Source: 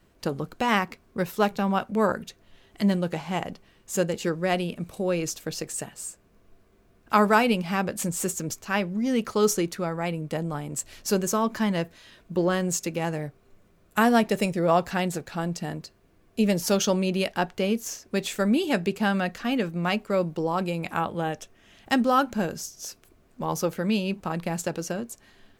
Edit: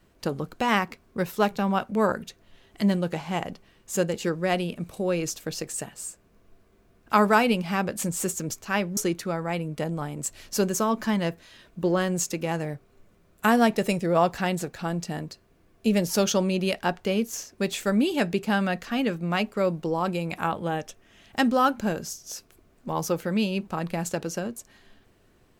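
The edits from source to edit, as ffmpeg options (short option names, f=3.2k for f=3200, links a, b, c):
-filter_complex "[0:a]asplit=2[a][b];[a]atrim=end=8.972[c];[b]atrim=start=9.498[d];[c][d]acrossfade=d=0.004:c1=hsin:c2=hsin"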